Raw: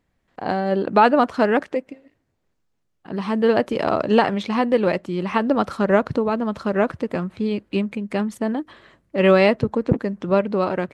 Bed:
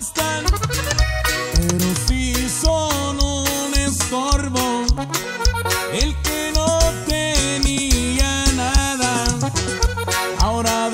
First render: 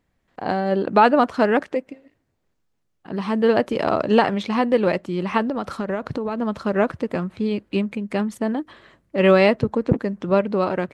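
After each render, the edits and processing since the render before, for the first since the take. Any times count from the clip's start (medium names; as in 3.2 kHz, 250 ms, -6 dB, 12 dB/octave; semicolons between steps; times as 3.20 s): 5.42–6.38 s: compression, threshold -21 dBFS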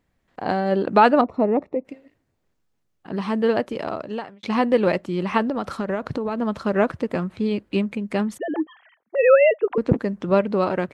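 1.21–1.85 s: boxcar filter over 28 samples; 3.16–4.43 s: fade out; 8.38–9.78 s: formants replaced by sine waves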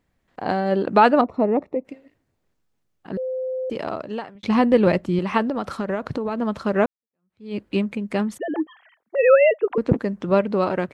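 3.17–3.70 s: bleep 516 Hz -23.5 dBFS; 4.35–5.19 s: bass shelf 180 Hz +11.5 dB; 6.86–7.57 s: fade in exponential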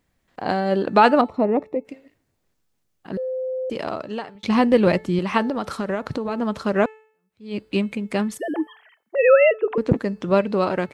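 treble shelf 3.4 kHz +6.5 dB; de-hum 435.9 Hz, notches 31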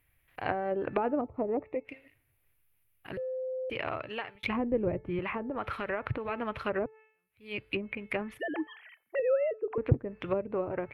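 FFT filter 130 Hz 0 dB, 190 Hz -18 dB, 290 Hz -10 dB, 920 Hz -7 dB, 1.7 kHz -1 dB, 2.4 kHz +6 dB, 4.6 kHz -13 dB, 7.5 kHz -15 dB, 11 kHz +10 dB; low-pass that closes with the level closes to 450 Hz, closed at -24 dBFS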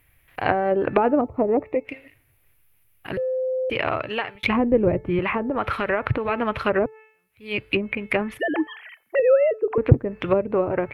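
trim +10.5 dB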